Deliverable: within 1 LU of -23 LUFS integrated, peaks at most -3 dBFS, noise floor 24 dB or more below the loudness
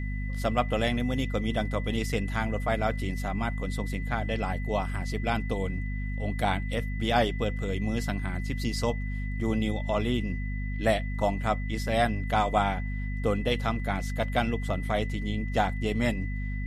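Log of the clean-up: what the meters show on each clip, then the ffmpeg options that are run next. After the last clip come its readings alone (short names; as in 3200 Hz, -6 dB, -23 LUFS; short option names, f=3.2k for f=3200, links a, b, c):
hum 50 Hz; harmonics up to 250 Hz; hum level -29 dBFS; steady tone 2000 Hz; tone level -42 dBFS; loudness -29.5 LUFS; peak -9.0 dBFS; loudness target -23.0 LUFS
-> -af "bandreject=f=50:t=h:w=4,bandreject=f=100:t=h:w=4,bandreject=f=150:t=h:w=4,bandreject=f=200:t=h:w=4,bandreject=f=250:t=h:w=4"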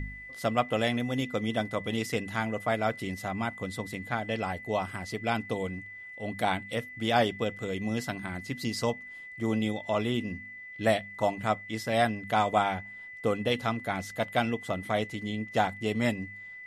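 hum none; steady tone 2000 Hz; tone level -42 dBFS
-> -af "bandreject=f=2k:w=30"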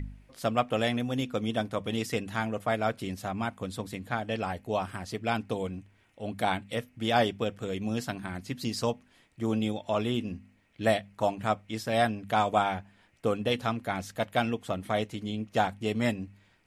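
steady tone none; loudness -31.0 LUFS; peak -10.0 dBFS; loudness target -23.0 LUFS
-> -af "volume=8dB,alimiter=limit=-3dB:level=0:latency=1"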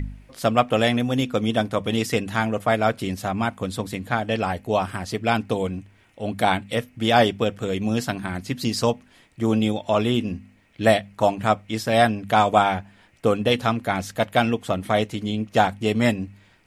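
loudness -23.0 LUFS; peak -3.0 dBFS; noise floor -56 dBFS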